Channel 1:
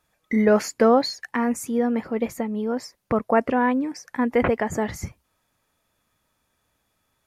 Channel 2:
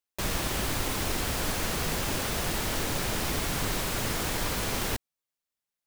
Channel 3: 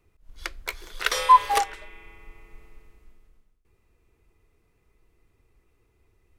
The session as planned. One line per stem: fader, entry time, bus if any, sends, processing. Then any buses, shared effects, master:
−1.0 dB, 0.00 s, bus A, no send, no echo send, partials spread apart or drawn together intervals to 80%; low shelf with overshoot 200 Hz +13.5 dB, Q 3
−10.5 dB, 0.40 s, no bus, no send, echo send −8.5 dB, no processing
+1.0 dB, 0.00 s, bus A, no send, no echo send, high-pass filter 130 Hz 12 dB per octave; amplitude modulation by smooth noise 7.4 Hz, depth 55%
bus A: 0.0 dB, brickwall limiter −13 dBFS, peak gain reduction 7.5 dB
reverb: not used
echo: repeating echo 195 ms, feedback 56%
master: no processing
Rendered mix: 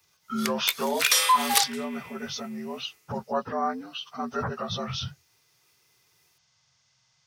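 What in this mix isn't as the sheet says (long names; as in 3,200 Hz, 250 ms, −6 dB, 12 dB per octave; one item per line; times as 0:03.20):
stem 2: muted
master: extra spectral tilt +4.5 dB per octave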